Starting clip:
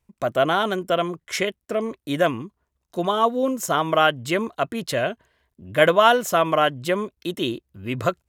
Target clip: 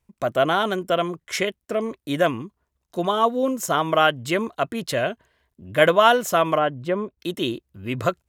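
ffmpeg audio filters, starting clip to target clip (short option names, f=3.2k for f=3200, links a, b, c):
-filter_complex "[0:a]asplit=3[a][b][c];[a]afade=t=out:st=6.57:d=0.02[d];[b]lowpass=f=1.1k:p=1,afade=t=in:st=6.57:d=0.02,afade=t=out:st=7.18:d=0.02[e];[c]afade=t=in:st=7.18:d=0.02[f];[d][e][f]amix=inputs=3:normalize=0"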